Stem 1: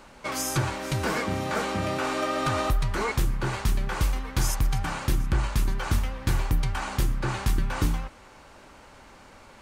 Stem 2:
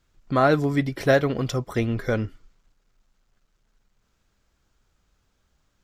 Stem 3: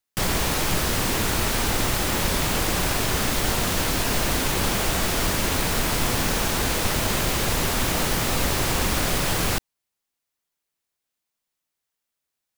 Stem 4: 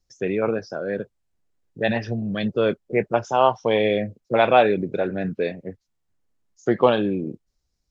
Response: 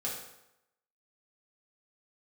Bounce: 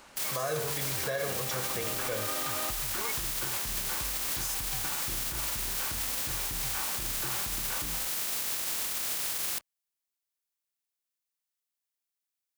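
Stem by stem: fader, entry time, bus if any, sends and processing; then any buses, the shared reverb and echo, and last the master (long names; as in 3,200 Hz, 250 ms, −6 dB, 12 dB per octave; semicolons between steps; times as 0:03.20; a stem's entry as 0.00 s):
−4.0 dB, 0.00 s, bus A, no send, no processing
−5.5 dB, 0.00 s, bus A, send −13.5 dB, comb filter 1.8 ms, depth 81%
−11.5 dB, 0.00 s, bus A, no send, compressing power law on the bin magnitudes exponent 0.38
muted
bus A: 0.0 dB, downward compressor, threshold −27 dBFS, peak gain reduction 11.5 dB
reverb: on, RT60 0.85 s, pre-delay 3 ms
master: spectral tilt +2 dB per octave; brickwall limiter −22.5 dBFS, peak gain reduction 9 dB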